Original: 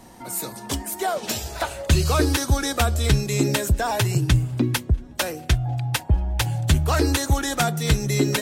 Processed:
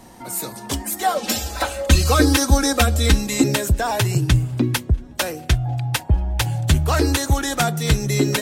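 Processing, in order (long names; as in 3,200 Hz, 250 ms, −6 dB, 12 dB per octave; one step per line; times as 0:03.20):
0:00.85–0:03.44: comb filter 3.8 ms, depth 96%
level +2 dB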